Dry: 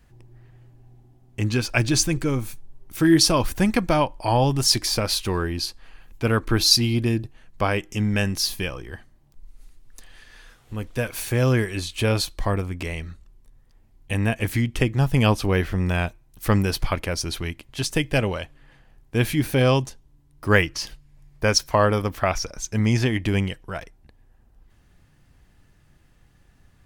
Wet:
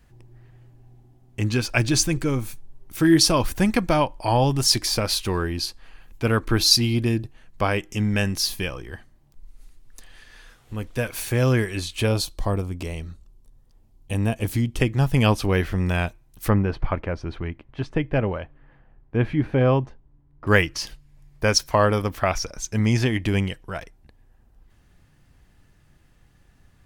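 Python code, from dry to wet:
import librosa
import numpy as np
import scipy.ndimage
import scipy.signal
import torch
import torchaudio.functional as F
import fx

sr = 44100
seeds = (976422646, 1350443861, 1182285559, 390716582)

y = fx.peak_eq(x, sr, hz=1900.0, db=-9.0, octaves=1.1, at=(12.07, 14.8))
y = fx.lowpass(y, sr, hz=1600.0, slope=12, at=(16.49, 20.47))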